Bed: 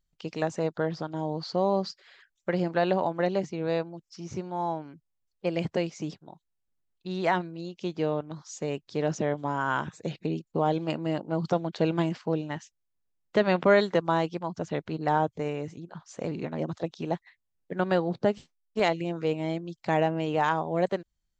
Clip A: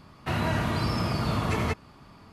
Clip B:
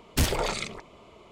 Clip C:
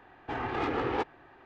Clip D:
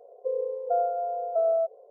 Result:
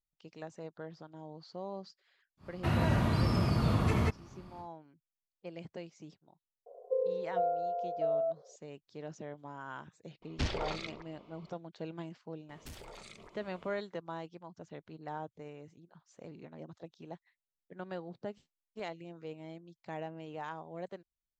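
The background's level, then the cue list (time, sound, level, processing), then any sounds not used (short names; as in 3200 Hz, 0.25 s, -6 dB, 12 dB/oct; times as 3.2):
bed -16.5 dB
2.37 add A -6.5 dB, fades 0.10 s + low shelf 390 Hz +7 dB
6.66 add D -6 dB + vocal rider
10.22 add B -9 dB + LPF 5300 Hz 24 dB/oct
12.49 add B -7.5 dB + compressor 4:1, threshold -42 dBFS
not used: C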